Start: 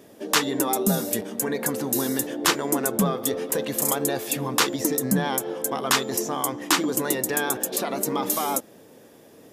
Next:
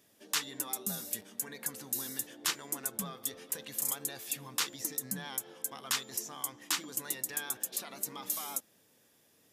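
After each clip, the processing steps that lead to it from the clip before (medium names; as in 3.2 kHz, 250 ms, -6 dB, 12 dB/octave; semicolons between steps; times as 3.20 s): amplifier tone stack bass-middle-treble 5-5-5; trim -2.5 dB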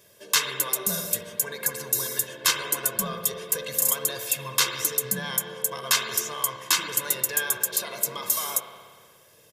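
comb 1.9 ms, depth 82%; reverberation RT60 1.7 s, pre-delay 59 ms, DRR 5 dB; trim +8 dB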